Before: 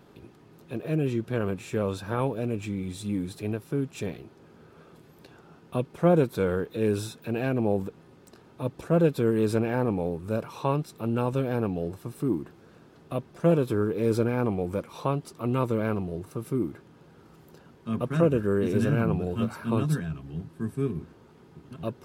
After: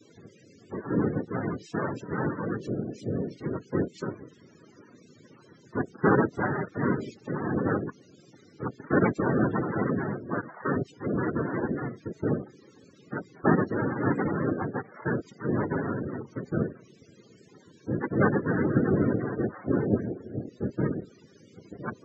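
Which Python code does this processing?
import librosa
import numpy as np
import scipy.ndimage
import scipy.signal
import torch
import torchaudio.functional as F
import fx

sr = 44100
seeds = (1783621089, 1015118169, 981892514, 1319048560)

y = fx.dmg_noise_colour(x, sr, seeds[0], colour='violet', level_db=-43.0)
y = fx.noise_vocoder(y, sr, seeds[1], bands=3)
y = fx.spec_topn(y, sr, count=32)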